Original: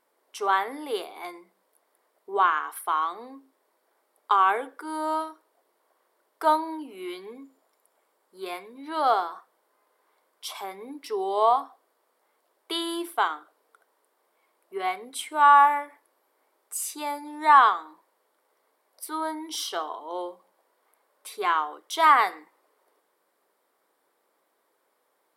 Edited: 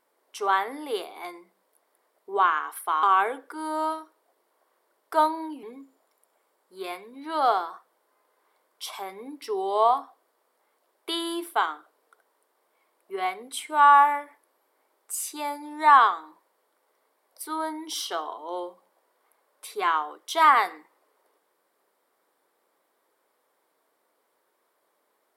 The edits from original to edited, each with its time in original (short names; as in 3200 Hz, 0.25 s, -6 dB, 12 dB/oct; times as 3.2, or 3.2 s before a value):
3.03–4.32 cut
6.92–7.25 cut